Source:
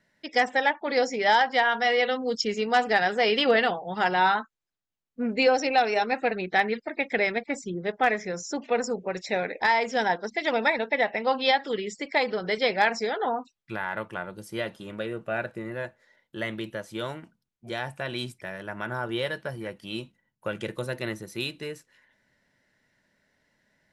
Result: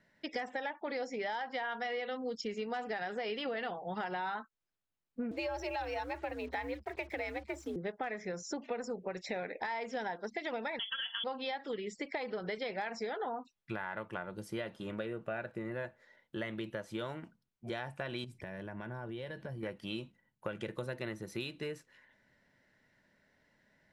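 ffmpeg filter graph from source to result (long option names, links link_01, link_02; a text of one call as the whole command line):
ffmpeg -i in.wav -filter_complex "[0:a]asettb=1/sr,asplit=3[link_01][link_02][link_03];[link_01]atrim=end=5.314[link_04];[link_02]atrim=start=5.31:end=7.76,asetpts=PTS-STARTPTS,afade=type=in:duration=0.004:curve=qsin,afade=type=out:start_time=2.446:duration=0.004:curve=qsin,aeval=exprs='if(lt(val(0),0),0.708*val(0),val(0))':channel_layout=same,afreqshift=68,acrusher=bits=7:mix=0:aa=0.5[link_05];[link_03]atrim=start=7.756[link_06];[link_04][link_05]acrossfade=duration=0.004:curve1=hsin:curve2=qsin[link_07];[link_07][link_06]acrossfade=duration=0.004:curve1=qsin:curve2=hsin,asettb=1/sr,asplit=3[link_08][link_09][link_10];[link_08]atrim=end=10.794[link_11];[link_09]atrim=start=10.79:end=11.24,asetpts=PTS-STARTPTS,afade=type=in:duration=0.004:curve=qsin,afade=type=out:start_time=0.446:duration=0.004:curve=qsin,lowshelf=frequency=440:gain=11.5,aecho=1:1:4.5:0.57,atrim=end_sample=19845,lowpass=frequency=3100:width_type=q:width=0.5098,lowpass=frequency=3100:width_type=q:width=0.6013,lowpass=frequency=3100:width_type=q:width=0.9,lowpass=frequency=3100:width_type=q:width=2.563,afreqshift=-3600[link_12];[link_10]atrim=start=11.236[link_13];[link_11][link_12]acrossfade=duration=0.004:curve1=hsin:curve2=qsin[link_14];[link_14][link_13]acrossfade=duration=0.004:curve1=qsin:curve2=hsin,asettb=1/sr,asplit=3[link_15][link_16][link_17];[link_15]atrim=end=18.244[link_18];[link_16]atrim=start=18.24:end=19.63,asetpts=PTS-STARTPTS,afade=type=in:duration=0.004:curve=qsin,afade=type=out:start_time=1.386:duration=0.004:curve=qsin,lowshelf=frequency=330:gain=8,bandreject=frequency=1300:width=6.2,acompressor=threshold=-40dB:ratio=5:attack=3.2:release=140:knee=1:detection=peak[link_19];[link_17]atrim=start=19.626[link_20];[link_18][link_19]acrossfade=duration=0.004:curve1=hsin:curve2=qsin[link_21];[link_21][link_20]acrossfade=duration=0.004:curve1=qsin:curve2=hsin,alimiter=limit=-16dB:level=0:latency=1,highshelf=frequency=4700:gain=-8.5,acompressor=threshold=-36dB:ratio=5" out.wav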